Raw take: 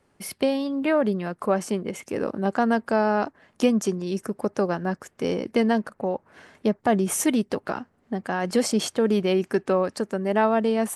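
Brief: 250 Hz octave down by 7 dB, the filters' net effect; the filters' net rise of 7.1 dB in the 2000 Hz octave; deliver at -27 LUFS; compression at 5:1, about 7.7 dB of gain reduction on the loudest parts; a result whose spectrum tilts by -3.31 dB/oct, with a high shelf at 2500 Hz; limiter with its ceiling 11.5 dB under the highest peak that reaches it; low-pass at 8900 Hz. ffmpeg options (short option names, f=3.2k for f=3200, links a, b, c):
-af "lowpass=8.9k,equalizer=f=250:t=o:g=-9,equalizer=f=2k:t=o:g=7.5,highshelf=f=2.5k:g=4.5,acompressor=threshold=-25dB:ratio=5,volume=7dB,alimiter=limit=-15.5dB:level=0:latency=1"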